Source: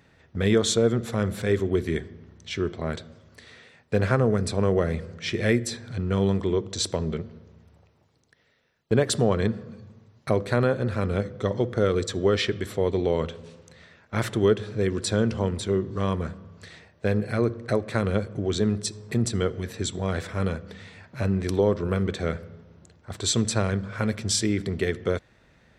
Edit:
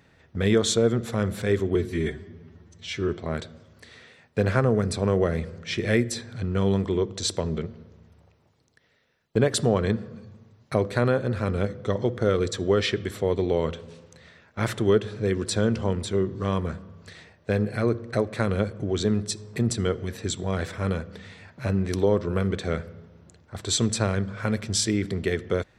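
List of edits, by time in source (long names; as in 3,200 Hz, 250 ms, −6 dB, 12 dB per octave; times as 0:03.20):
0:01.75–0:02.64: time-stretch 1.5×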